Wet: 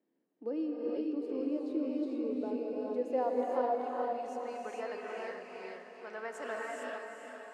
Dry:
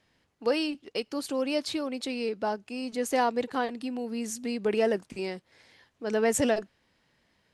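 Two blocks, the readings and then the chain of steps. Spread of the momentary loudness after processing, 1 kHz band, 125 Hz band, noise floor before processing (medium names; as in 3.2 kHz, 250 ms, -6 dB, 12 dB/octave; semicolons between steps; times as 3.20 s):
12 LU, -4.5 dB, no reading, -72 dBFS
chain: high-pass 180 Hz 24 dB/octave; treble shelf 7.4 kHz +5 dB; in parallel at -2 dB: compression, threshold -36 dBFS, peak gain reduction 15 dB; on the sum: band-pass sweep 320 Hz -> 1.2 kHz, 2.16–4.55 s; on a send: echo that smears into a reverb 453 ms, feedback 54%, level -7 dB; on the sum: gated-style reverb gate 480 ms rising, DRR -3 dB; trim -6 dB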